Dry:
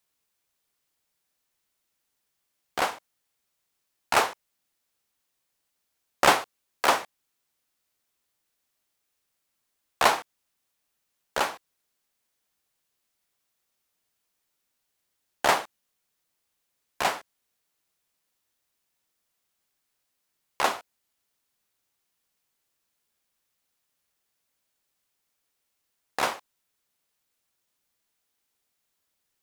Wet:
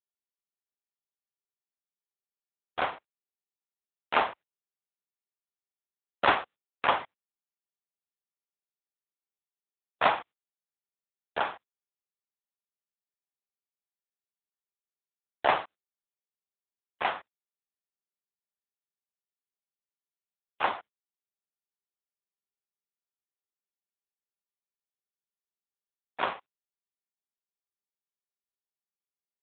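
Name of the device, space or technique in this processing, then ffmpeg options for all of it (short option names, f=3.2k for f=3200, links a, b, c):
mobile call with aggressive noise cancelling: -filter_complex "[0:a]agate=range=-33dB:threshold=-36dB:ratio=3:detection=peak,asplit=3[a][b][c];[a]afade=t=out:st=2.8:d=0.02[d];[b]lowshelf=f=86:g=6,afade=t=in:st=2.8:d=0.02,afade=t=out:st=4.3:d=0.02[e];[c]afade=t=in:st=4.3:d=0.02[f];[d][e][f]amix=inputs=3:normalize=0,highpass=f=120:p=1,afftdn=nr=27:nf=-55" -ar 8000 -c:a libopencore_amrnb -b:a 7950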